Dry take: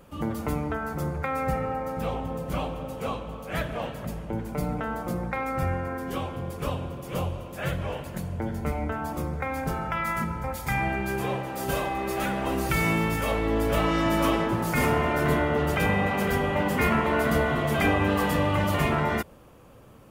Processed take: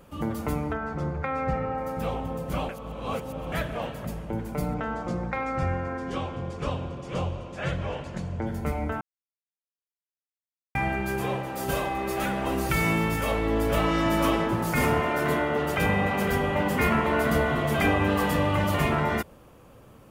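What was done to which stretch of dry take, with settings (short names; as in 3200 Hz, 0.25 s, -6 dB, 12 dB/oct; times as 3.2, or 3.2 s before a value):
0.73–1.78 air absorption 120 m
2.69–3.52 reverse
4.74–8.47 LPF 7300 Hz 24 dB/oct
9.01–10.75 mute
15–15.78 HPF 210 Hz 6 dB/oct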